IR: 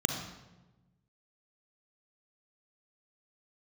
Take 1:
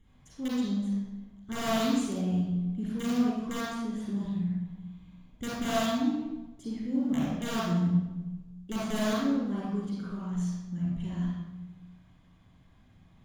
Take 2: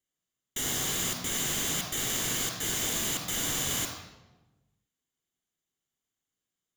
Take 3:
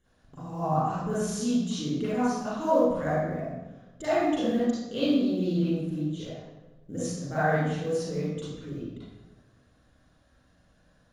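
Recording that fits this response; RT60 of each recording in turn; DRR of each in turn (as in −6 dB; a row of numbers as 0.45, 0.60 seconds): 2; 1.1, 1.1, 1.1 seconds; −7.5, 1.5, −12.5 decibels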